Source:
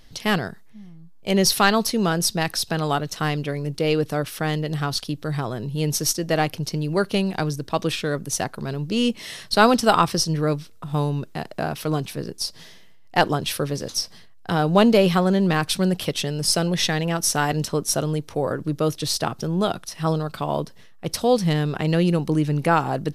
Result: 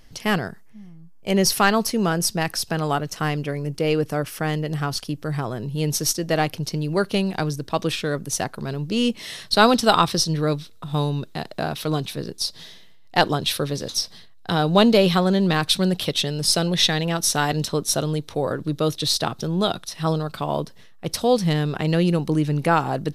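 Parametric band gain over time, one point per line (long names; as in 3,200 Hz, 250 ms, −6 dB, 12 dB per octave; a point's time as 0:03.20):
parametric band 3,800 Hz 0.36 octaves
0:05.31 −7 dB
0:05.93 +1 dB
0:09.05 +1 dB
0:09.98 +9 dB
0:19.84 +9 dB
0:20.30 +2.5 dB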